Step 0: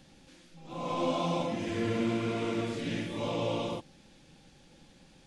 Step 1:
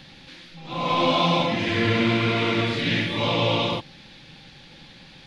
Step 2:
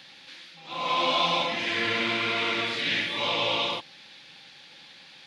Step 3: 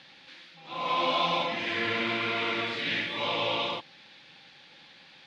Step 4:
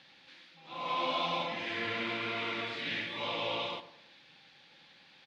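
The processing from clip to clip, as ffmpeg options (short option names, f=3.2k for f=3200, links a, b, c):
-af "equalizer=f=125:t=o:w=1:g=6,equalizer=f=1k:t=o:w=1:g=4,equalizer=f=2k:t=o:w=1:g=8,equalizer=f=4k:t=o:w=1:g=12,equalizer=f=8k:t=o:w=1:g=-9,volume=6dB"
-af "highpass=f=980:p=1"
-af "aemphasis=mode=reproduction:type=50fm,volume=-1.5dB"
-filter_complex "[0:a]asplit=2[a][b];[b]adelay=106,lowpass=f=1.6k:p=1,volume=-12.5dB,asplit=2[c][d];[d]adelay=106,lowpass=f=1.6k:p=1,volume=0.45,asplit=2[e][f];[f]adelay=106,lowpass=f=1.6k:p=1,volume=0.45,asplit=2[g][h];[h]adelay=106,lowpass=f=1.6k:p=1,volume=0.45[i];[a][c][e][g][i]amix=inputs=5:normalize=0,volume=-6dB"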